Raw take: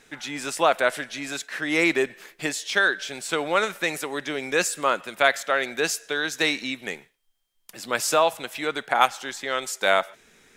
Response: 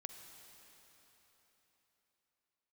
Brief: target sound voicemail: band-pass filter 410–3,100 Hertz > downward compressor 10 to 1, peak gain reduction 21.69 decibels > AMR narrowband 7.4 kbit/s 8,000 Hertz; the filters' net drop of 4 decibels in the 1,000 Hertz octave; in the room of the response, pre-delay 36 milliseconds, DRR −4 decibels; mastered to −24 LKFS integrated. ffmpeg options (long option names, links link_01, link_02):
-filter_complex "[0:a]equalizer=frequency=1000:width_type=o:gain=-5.5,asplit=2[link_01][link_02];[1:a]atrim=start_sample=2205,adelay=36[link_03];[link_02][link_03]afir=irnorm=-1:irlink=0,volume=8dB[link_04];[link_01][link_04]amix=inputs=2:normalize=0,highpass=410,lowpass=3100,acompressor=threshold=-34dB:ratio=10,volume=15.5dB" -ar 8000 -c:a libopencore_amrnb -b:a 7400